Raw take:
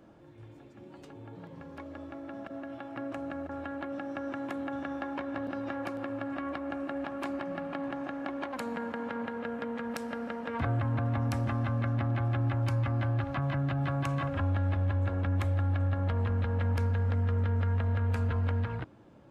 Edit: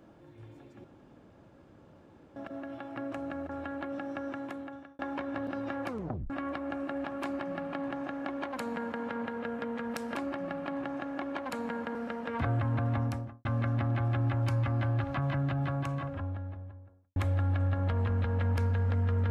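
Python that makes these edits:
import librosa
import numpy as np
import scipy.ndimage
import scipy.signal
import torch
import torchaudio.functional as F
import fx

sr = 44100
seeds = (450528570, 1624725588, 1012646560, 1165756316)

y = fx.studio_fade_out(x, sr, start_s=11.15, length_s=0.5)
y = fx.studio_fade_out(y, sr, start_s=13.48, length_s=1.88)
y = fx.edit(y, sr, fx.room_tone_fill(start_s=0.84, length_s=1.52),
    fx.fade_out_span(start_s=3.95, length_s=1.04, curve='qsin'),
    fx.tape_stop(start_s=5.88, length_s=0.42),
    fx.duplicate(start_s=7.22, length_s=1.8, to_s=10.15), tone=tone)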